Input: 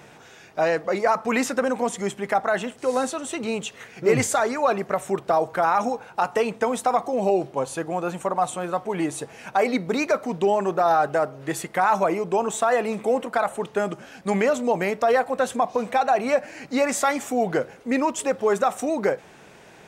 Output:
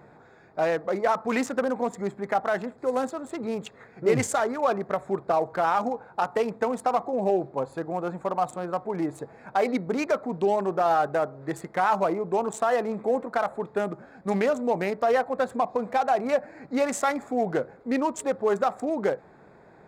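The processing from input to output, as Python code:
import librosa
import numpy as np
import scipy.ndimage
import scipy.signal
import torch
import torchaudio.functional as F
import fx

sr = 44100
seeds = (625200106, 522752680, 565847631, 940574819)

y = fx.wiener(x, sr, points=15)
y = y * librosa.db_to_amplitude(-2.5)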